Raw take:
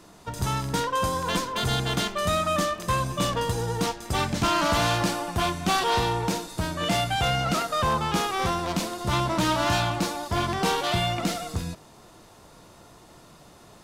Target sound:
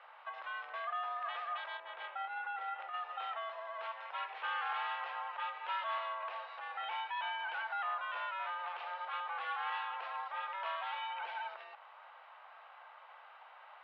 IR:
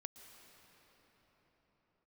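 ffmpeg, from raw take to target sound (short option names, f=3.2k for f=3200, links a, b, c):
-filter_complex "[0:a]asettb=1/sr,asplit=3[a][b][c];[a]atrim=end=1.774[d];[b]atrim=start=1.77:end=2.94,asetpts=PTS-STARTPTS,afade=t=in:d=0.004:c=qsin,afade=t=out:st=1.166:d=0.004:c=qsin,aemphasis=mode=reproduction:type=bsi[e];[c]atrim=start=2.936[f];[d][e]acrossfade=d=0.004:c1=hsin:c2=qsin[g];[g][f]acrossfade=d=0.004:c1=qsin:c2=hsin,alimiter=level_in=4.5dB:limit=-24dB:level=0:latency=1:release=103,volume=-4.5dB,highpass=f=520:t=q:w=0.5412,highpass=f=520:t=q:w=1.307,lowpass=f=2.8k:t=q:w=0.5176,lowpass=f=2.8k:t=q:w=0.7071,lowpass=f=2.8k:t=q:w=1.932,afreqshift=190,volume=-1dB"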